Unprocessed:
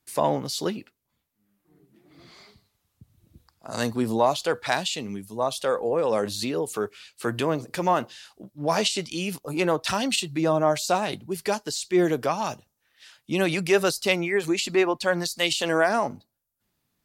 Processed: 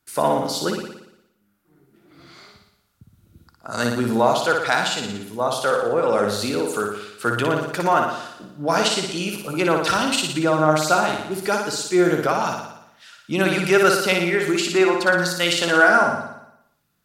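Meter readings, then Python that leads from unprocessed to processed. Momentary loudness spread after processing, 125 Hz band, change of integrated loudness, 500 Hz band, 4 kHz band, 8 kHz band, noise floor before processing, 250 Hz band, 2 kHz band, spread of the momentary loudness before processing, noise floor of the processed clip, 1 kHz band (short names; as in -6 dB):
10 LU, +4.5 dB, +5.0 dB, +4.0 dB, +4.0 dB, +4.0 dB, -77 dBFS, +4.0 dB, +8.5 dB, 9 LU, -66 dBFS, +6.5 dB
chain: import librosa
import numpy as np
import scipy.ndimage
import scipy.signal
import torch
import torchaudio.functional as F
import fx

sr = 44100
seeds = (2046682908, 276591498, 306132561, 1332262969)

p1 = fx.peak_eq(x, sr, hz=1400.0, db=13.0, octaves=0.2)
p2 = p1 + fx.room_flutter(p1, sr, wall_m=10.0, rt60_s=0.81, dry=0)
y = p2 * 10.0 ** (2.0 / 20.0)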